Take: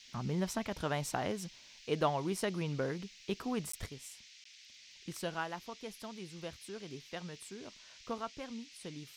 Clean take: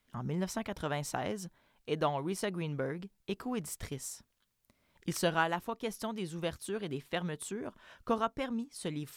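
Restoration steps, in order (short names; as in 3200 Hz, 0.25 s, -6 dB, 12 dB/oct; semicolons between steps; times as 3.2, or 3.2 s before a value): de-click; interpolate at 3.72/4.44, 14 ms; noise print and reduce 15 dB; gain 0 dB, from 3.86 s +8.5 dB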